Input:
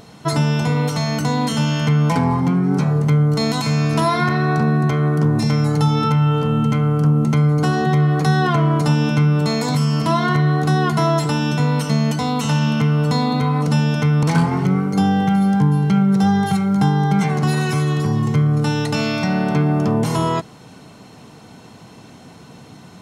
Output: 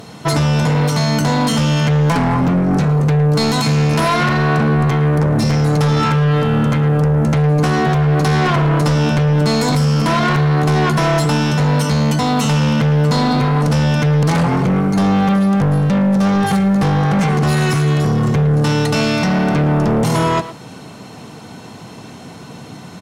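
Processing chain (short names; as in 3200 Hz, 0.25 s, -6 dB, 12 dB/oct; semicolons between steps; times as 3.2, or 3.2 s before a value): HPF 67 Hz 12 dB/oct; in parallel at -10.5 dB: sine folder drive 12 dB, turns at -5 dBFS; on the sum: speakerphone echo 0.11 s, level -11 dB; gain -2 dB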